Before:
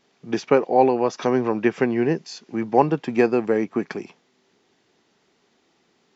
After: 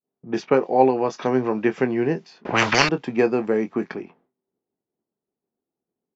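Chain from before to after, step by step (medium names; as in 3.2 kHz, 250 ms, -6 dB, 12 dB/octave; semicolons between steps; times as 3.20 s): treble shelf 5.2 kHz -4 dB; doubling 23 ms -10.5 dB; expander -52 dBFS; level-controlled noise filter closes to 650 Hz, open at -18 dBFS; 2.45–2.89 s: spectrum-flattening compressor 10:1; trim -1 dB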